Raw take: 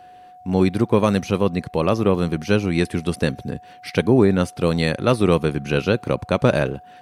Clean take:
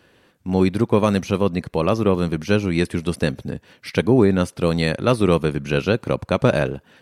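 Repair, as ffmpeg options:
-af "bandreject=f=730:w=30"

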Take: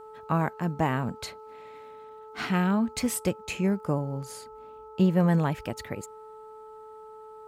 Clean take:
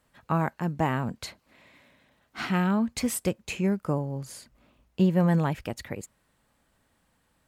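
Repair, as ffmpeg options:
-af "bandreject=f=435:t=h:w=4,bandreject=f=870:t=h:w=4,bandreject=f=1.305k:t=h:w=4"

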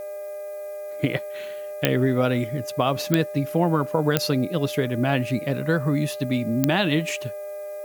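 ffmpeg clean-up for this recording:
-af "adeclick=t=4,bandreject=f=405.1:t=h:w=4,bandreject=f=810.2:t=h:w=4,bandreject=f=1.2153k:t=h:w=4,bandreject=f=1.6204k:t=h:w=4,bandreject=f=2.0255k:t=h:w=4,bandreject=f=2.4306k:t=h:w=4,bandreject=f=600:w=30,agate=range=-21dB:threshold=-26dB"

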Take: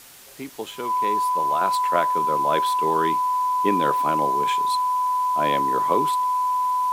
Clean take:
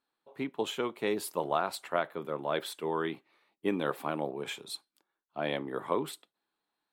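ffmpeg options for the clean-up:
-af "adeclick=t=4,bandreject=f=1k:w=30,afwtdn=0.0056,asetnsamples=n=441:p=0,asendcmd='1.61 volume volume -7dB',volume=0dB"

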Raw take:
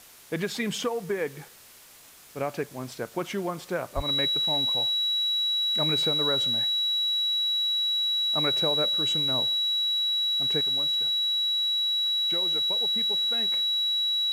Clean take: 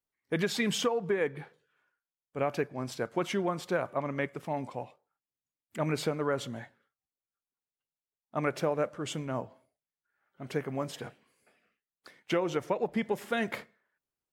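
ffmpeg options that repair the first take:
-filter_complex "[0:a]bandreject=f=3.9k:w=30,asplit=3[a][b][c];[a]afade=t=out:st=3.95:d=0.02[d];[b]highpass=f=140:w=0.5412,highpass=f=140:w=1.3066,afade=t=in:st=3.95:d=0.02,afade=t=out:st=4.07:d=0.02[e];[c]afade=t=in:st=4.07:d=0.02[f];[d][e][f]amix=inputs=3:normalize=0,afwtdn=0.0032,asetnsamples=n=441:p=0,asendcmd='10.61 volume volume 9.5dB',volume=0dB"

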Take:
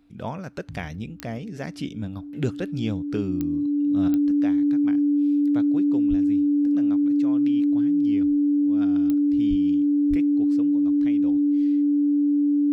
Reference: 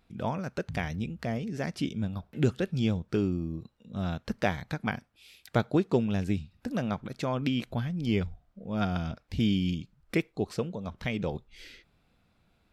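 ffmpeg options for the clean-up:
-filter_complex "[0:a]adeclick=t=4,bandreject=f=290:w=30,asplit=3[a][b][c];[a]afade=t=out:st=6.09:d=0.02[d];[b]highpass=f=140:w=0.5412,highpass=f=140:w=1.3066,afade=t=in:st=6.09:d=0.02,afade=t=out:st=6.21:d=0.02[e];[c]afade=t=in:st=6.21:d=0.02[f];[d][e][f]amix=inputs=3:normalize=0,asplit=3[g][h][i];[g]afade=t=out:st=9.49:d=0.02[j];[h]highpass=f=140:w=0.5412,highpass=f=140:w=1.3066,afade=t=in:st=9.49:d=0.02,afade=t=out:st=9.61:d=0.02[k];[i]afade=t=in:st=9.61:d=0.02[l];[j][k][l]amix=inputs=3:normalize=0,asplit=3[m][n][o];[m]afade=t=out:st=10.09:d=0.02[p];[n]highpass=f=140:w=0.5412,highpass=f=140:w=1.3066,afade=t=in:st=10.09:d=0.02,afade=t=out:st=10.21:d=0.02[q];[o]afade=t=in:st=10.21:d=0.02[r];[p][q][r]amix=inputs=3:normalize=0,asetnsamples=n=441:p=0,asendcmd='4.08 volume volume 10.5dB',volume=0dB"

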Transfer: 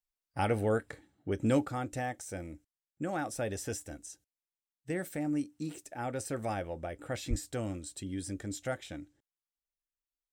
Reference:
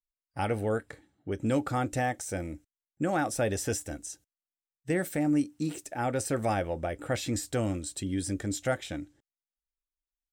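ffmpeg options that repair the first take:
-filter_complex "[0:a]asplit=3[a][b][c];[a]afade=t=out:st=7.29:d=0.02[d];[b]highpass=f=140:w=0.5412,highpass=f=140:w=1.3066,afade=t=in:st=7.29:d=0.02,afade=t=out:st=7.41:d=0.02[e];[c]afade=t=in:st=7.41:d=0.02[f];[d][e][f]amix=inputs=3:normalize=0,asetnsamples=n=441:p=0,asendcmd='1.65 volume volume 6.5dB',volume=0dB"

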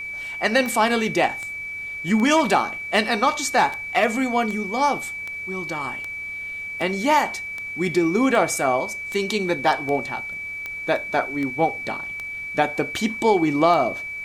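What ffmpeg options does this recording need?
-af "adeclick=t=4,bandreject=f=99:t=h:w=4,bandreject=f=198:t=h:w=4,bandreject=f=297:t=h:w=4,bandreject=f=396:t=h:w=4,bandreject=f=495:t=h:w=4,bandreject=f=2.3k:w=30,agate=range=-21dB:threshold=-24dB"

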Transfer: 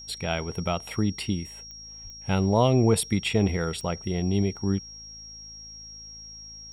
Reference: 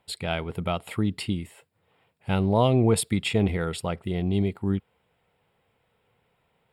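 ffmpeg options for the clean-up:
-filter_complex "[0:a]adeclick=t=4,bandreject=f=54:t=h:w=4,bandreject=f=108:t=h:w=4,bandreject=f=162:t=h:w=4,bandreject=f=216:t=h:w=4,bandreject=f=270:t=h:w=4,bandreject=f=5.6k:w=30,asplit=3[a][b][c];[a]afade=t=out:st=2.03:d=0.02[d];[b]highpass=f=140:w=0.5412,highpass=f=140:w=1.3066,afade=t=in:st=2.03:d=0.02,afade=t=out:st=2.15:d=0.02[e];[c]afade=t=in:st=2.15:d=0.02[f];[d][e][f]amix=inputs=3:normalize=0"

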